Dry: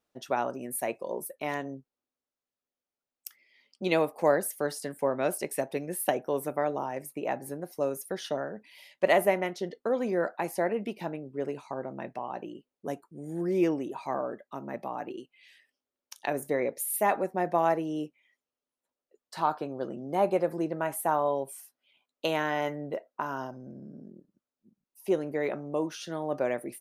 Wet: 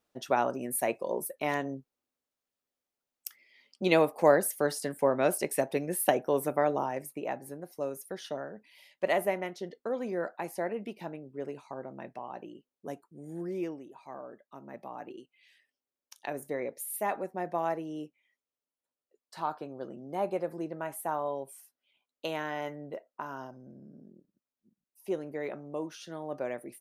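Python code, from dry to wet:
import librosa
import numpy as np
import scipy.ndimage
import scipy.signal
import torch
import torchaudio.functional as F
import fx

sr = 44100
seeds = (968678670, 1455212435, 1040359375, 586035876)

y = fx.gain(x, sr, db=fx.line((6.81, 2.0), (7.43, -5.0), (13.37, -5.0), (13.88, -14.0), (15.03, -6.0)))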